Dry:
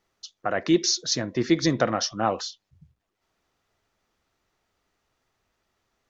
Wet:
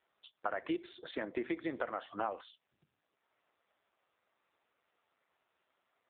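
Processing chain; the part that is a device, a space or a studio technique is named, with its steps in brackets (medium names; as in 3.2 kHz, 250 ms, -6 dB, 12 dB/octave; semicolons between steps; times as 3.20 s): voicemail (band-pass 410–2800 Hz; compression 8:1, threshold -34 dBFS, peak gain reduction 16 dB; trim +2 dB; AMR-NB 5.9 kbps 8 kHz)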